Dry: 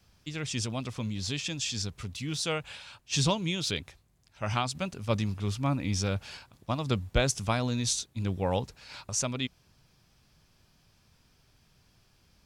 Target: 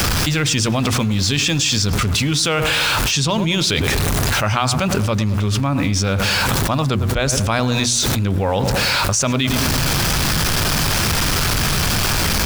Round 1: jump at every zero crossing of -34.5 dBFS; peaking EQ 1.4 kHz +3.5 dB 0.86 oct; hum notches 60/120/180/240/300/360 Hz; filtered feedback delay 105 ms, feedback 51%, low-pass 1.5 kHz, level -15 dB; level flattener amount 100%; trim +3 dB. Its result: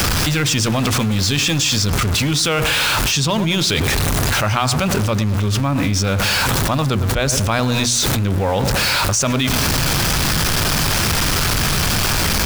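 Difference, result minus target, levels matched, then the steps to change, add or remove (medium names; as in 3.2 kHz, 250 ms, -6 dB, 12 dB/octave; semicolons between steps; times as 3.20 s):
jump at every zero crossing: distortion +8 dB
change: jump at every zero crossing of -43.5 dBFS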